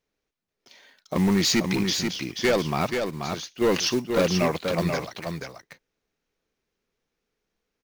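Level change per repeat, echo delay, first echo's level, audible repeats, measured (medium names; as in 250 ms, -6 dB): no regular repeats, 483 ms, -5.5 dB, 1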